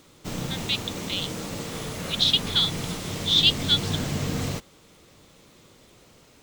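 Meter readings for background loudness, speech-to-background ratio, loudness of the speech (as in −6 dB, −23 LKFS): −31.0 LKFS, 8.0 dB, −23.0 LKFS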